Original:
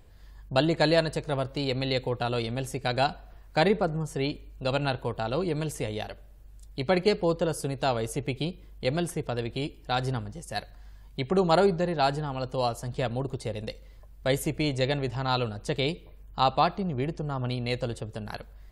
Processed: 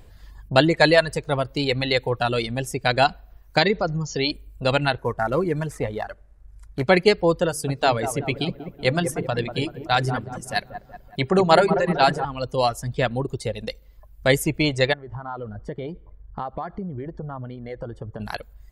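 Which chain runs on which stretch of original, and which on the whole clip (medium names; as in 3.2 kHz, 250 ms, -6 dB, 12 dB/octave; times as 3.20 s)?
3.58–4.31 s: peaking EQ 4.9 kHz +12 dB 0.85 oct + compression 2:1, threshold -25 dBFS + brick-wall FIR low-pass 7.3 kHz
4.98–6.88 s: CVSD coder 64 kbps + resonant high shelf 2.3 kHz -9 dB, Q 1.5
7.49–12.25 s: hum notches 50/100/150/200/250/300/350/400/450/500 Hz + feedback echo behind a low-pass 189 ms, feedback 53%, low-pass 1.7 kHz, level -6 dB
14.93–18.20 s: Savitzky-Golay filter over 41 samples + compression, threshold -33 dBFS
whole clip: reverb removal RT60 1.3 s; dynamic bell 1.9 kHz, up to +6 dB, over -45 dBFS, Q 1.9; trim +7 dB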